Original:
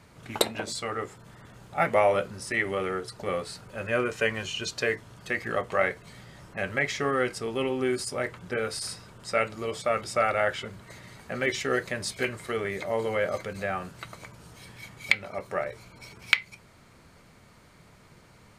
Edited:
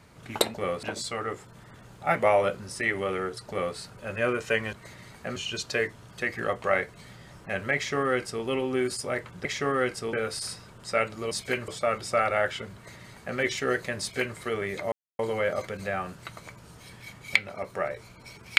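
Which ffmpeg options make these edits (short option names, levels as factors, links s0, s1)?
-filter_complex "[0:a]asplit=10[s0][s1][s2][s3][s4][s5][s6][s7][s8][s9];[s0]atrim=end=0.542[s10];[s1]atrim=start=3.188:end=3.482[s11];[s2]atrim=start=0.538:end=4.442[s12];[s3]atrim=start=10.778:end=11.412[s13];[s4]atrim=start=4.438:end=8.532[s14];[s5]atrim=start=6.838:end=7.522[s15];[s6]atrim=start=8.528:end=9.712[s16];[s7]atrim=start=12.018:end=12.392[s17];[s8]atrim=start=9.708:end=12.95,asetpts=PTS-STARTPTS,afade=t=out:st=3.238:d=0.004:c=hsin,apad=pad_dur=0.27[s18];[s9]atrim=start=12.95,asetpts=PTS-STARTPTS,afade=t=in:d=0.004:c=hsin[s19];[s10][s11]acrossfade=d=0.004:c1=hsin:c2=hsin[s20];[s20][s12]acrossfade=d=0.004:c1=hsin:c2=hsin[s21];[s21][s13]acrossfade=d=0.004:c1=hsin:c2=hsin[s22];[s22][s14]acrossfade=d=0.004:c1=hsin:c2=hsin[s23];[s23][s15]acrossfade=d=0.004:c1=hsin:c2=hsin[s24];[s24][s16]acrossfade=d=0.004:c1=hsin:c2=hsin[s25];[s25][s17]acrossfade=d=0.004:c1=hsin:c2=hsin[s26];[s18][s19]concat=n=2:v=0:a=1[s27];[s26][s27]acrossfade=d=0.004:c1=hsin:c2=hsin"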